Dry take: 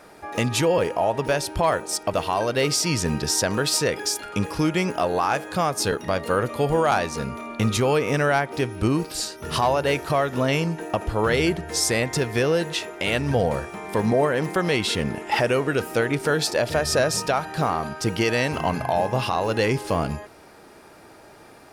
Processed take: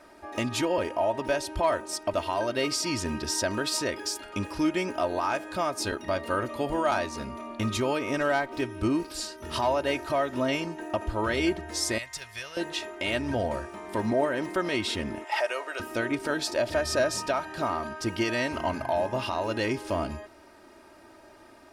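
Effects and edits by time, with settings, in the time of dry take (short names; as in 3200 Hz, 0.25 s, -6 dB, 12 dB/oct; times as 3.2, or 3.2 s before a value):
8.2–8.62 running maximum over 3 samples
11.98–12.57 passive tone stack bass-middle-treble 10-0-10
15.24–15.8 HPF 540 Hz 24 dB/oct
whole clip: high shelf 9400 Hz -7 dB; comb 3.2 ms, depth 67%; gain -6.5 dB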